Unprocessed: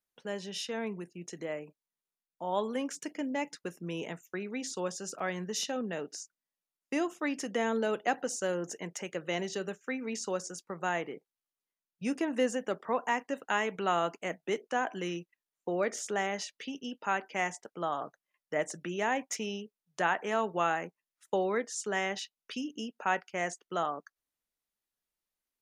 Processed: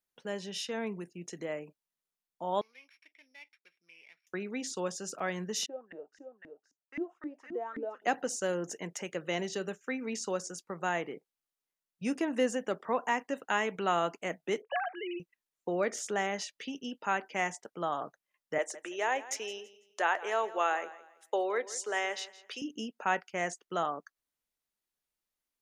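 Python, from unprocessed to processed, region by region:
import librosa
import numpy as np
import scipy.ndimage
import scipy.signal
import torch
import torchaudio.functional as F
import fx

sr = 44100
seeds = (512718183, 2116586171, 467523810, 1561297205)

y = fx.chain(x, sr, fx.sample_sort(block=8),
    fx.bandpass_q(hz=2300.0, q=9.5), at=(2.61, 4.27))
y = fx.chain(y, sr, fx.echo_single(ms=510, db=-6.5),
    fx.filter_lfo_bandpass(shape='saw_up', hz=3.8, low_hz=260.0, high_hz=2100.0, q=5.5), at=(5.66, 8.02))
y = fx.chain(y, sr, fx.sine_speech(),
    fx.peak_eq(hz=340.0, db=-5.5, octaves=0.93), at=(14.62, 15.2))
y = fx.chain(y, sr, fx.highpass(hz=370.0, slope=24),
    fx.echo_feedback(ms=166, feedback_pct=30, wet_db=-17.0), at=(18.58, 22.62))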